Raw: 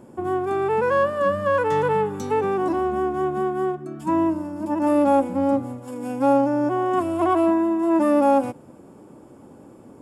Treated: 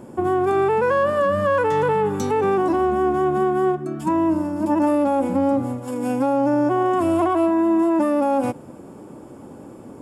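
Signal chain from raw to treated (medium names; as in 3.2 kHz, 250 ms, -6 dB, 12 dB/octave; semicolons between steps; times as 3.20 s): peak limiter -18 dBFS, peak gain reduction 10 dB; trim +6 dB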